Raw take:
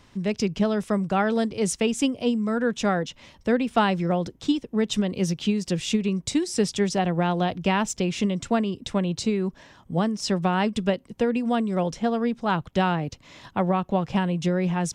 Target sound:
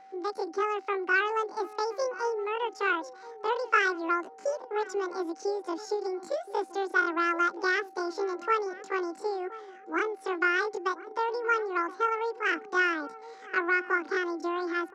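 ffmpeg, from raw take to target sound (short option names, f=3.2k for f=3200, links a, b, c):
-filter_complex "[0:a]highpass=f=140:w=0.5412,highpass=f=140:w=1.3066,equalizer=f=370:t=q:w=4:g=-5,equalizer=f=740:t=q:w=4:g=10,equalizer=f=1.1k:t=q:w=4:g=4,equalizer=f=1.8k:t=q:w=4:g=-8,lowpass=f=2.8k:w=0.5412,lowpass=f=2.8k:w=1.3066,asetrate=85689,aresample=44100,atempo=0.514651,aeval=exprs='val(0)+0.00794*sin(2*PI*770*n/s)':c=same,asplit=2[a][b];[b]adelay=1023,lowpass=f=1.2k:p=1,volume=-15dB,asplit=2[c][d];[d]adelay=1023,lowpass=f=1.2k:p=1,volume=0.34,asplit=2[e][f];[f]adelay=1023,lowpass=f=1.2k:p=1,volume=0.34[g];[c][e][g]amix=inputs=3:normalize=0[h];[a][h]amix=inputs=2:normalize=0,volume=-7dB"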